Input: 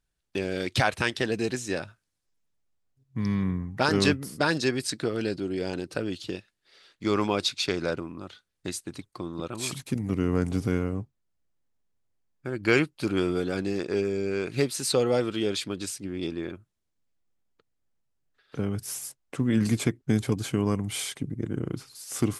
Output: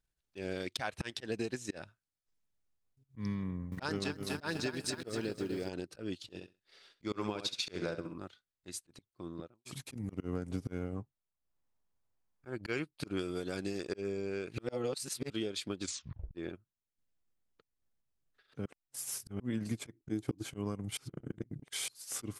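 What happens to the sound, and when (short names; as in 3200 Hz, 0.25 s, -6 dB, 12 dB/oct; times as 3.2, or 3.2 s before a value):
3.47–5.69 lo-fi delay 0.247 s, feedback 55%, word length 8-bit, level -8 dB
6.22–8.18 feedback echo 66 ms, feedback 26%, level -7 dB
9.18–9.65 studio fade out
10.96–12.56 bell 940 Hz +6.5 dB 1.2 oct
13.19–13.93 high shelf 3900 Hz +9 dB
14.58–15.3 reverse
15.82 tape stop 0.53 s
18.66–19.4 reverse
19.95–20.45 bell 320 Hz +14 dB 0.27 oct
20.97–21.88 reverse
whole clip: auto swell 0.168 s; compressor 6:1, threshold -28 dBFS; transient shaper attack +3 dB, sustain -9 dB; gain -5 dB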